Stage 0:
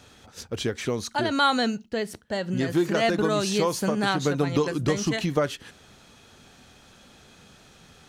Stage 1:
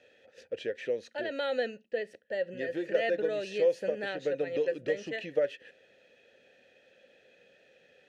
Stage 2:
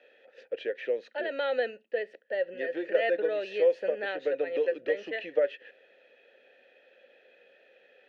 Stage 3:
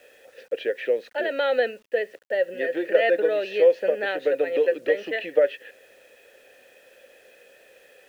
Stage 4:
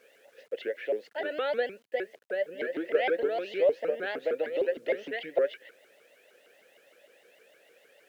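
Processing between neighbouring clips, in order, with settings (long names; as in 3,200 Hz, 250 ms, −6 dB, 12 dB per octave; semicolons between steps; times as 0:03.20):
formant filter e; level +4 dB
three-way crossover with the lows and the highs turned down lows −24 dB, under 290 Hz, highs −23 dB, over 3,800 Hz; level +3 dB
bit reduction 11 bits; level +6.5 dB
high-pass filter 120 Hz 24 dB per octave; pitch modulation by a square or saw wave saw up 6.5 Hz, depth 250 cents; level −7 dB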